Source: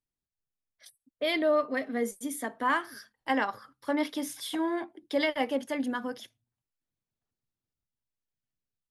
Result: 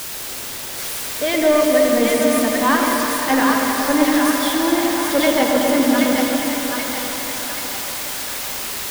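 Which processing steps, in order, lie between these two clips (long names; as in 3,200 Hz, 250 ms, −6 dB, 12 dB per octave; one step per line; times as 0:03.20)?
spike at every zero crossing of −28 dBFS
low-pass filter 3,400 Hz 6 dB per octave
low-shelf EQ 130 Hz +9 dB
in parallel at +1 dB: output level in coarse steps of 13 dB
on the sum: bit-depth reduction 6 bits, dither triangular
soft clipping −17 dBFS, distortion −14 dB
echo with a time of its own for lows and highs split 740 Hz, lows 122 ms, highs 780 ms, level −3 dB
on a send at −1 dB: convolution reverb RT60 4.4 s, pre-delay 69 ms
on the sum: level +6 dB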